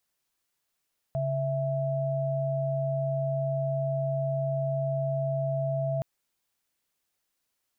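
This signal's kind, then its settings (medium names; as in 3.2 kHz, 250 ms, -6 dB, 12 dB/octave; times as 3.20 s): chord C#3/E5 sine, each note -28.5 dBFS 4.87 s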